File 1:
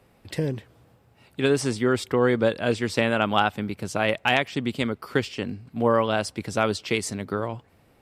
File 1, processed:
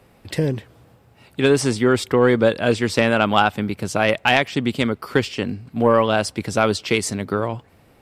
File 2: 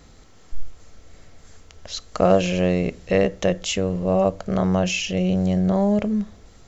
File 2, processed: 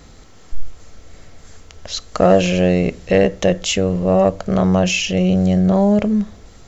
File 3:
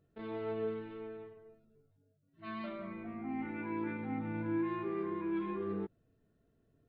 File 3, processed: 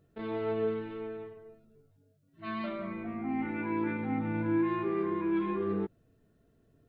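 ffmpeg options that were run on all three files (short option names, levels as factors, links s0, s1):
-af "acontrast=46"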